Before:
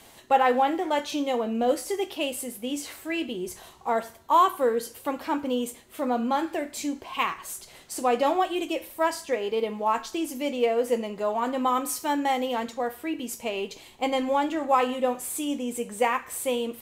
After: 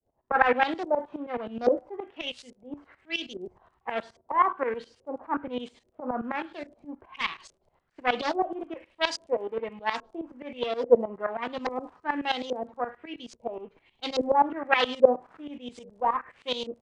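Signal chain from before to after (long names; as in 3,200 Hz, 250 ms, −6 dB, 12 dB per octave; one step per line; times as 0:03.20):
phase distortion by the signal itself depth 0.31 ms
auto-filter low-pass saw up 1.2 Hz 460–5,700 Hz
shaped tremolo saw up 9.5 Hz, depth 85%
surface crackle 34 per second −49 dBFS
downsampling to 22,050 Hz
multiband upward and downward expander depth 70%
level −1.5 dB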